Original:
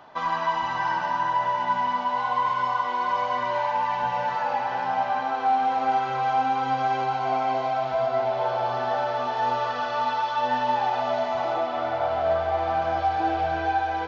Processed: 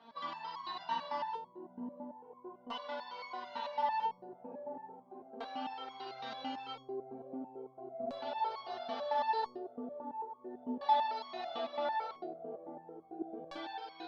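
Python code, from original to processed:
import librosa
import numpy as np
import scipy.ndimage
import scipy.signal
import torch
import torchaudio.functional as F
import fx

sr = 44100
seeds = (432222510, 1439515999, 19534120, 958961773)

y = scipy.signal.sosfilt(scipy.signal.butter(6, 160.0, 'highpass', fs=sr, output='sos'), x)
y = fx.low_shelf(y, sr, hz=380.0, db=10.5)
y = y + 10.0 ** (-8.5 / 20.0) * np.pad(y, (int(77 * sr / 1000.0), 0))[:len(y)]
y = fx.filter_lfo_lowpass(y, sr, shape='square', hz=0.37, low_hz=390.0, high_hz=4300.0, q=2.7)
y = fx.resonator_held(y, sr, hz=9.0, low_hz=230.0, high_hz=1100.0)
y = y * 10.0 ** (2.5 / 20.0)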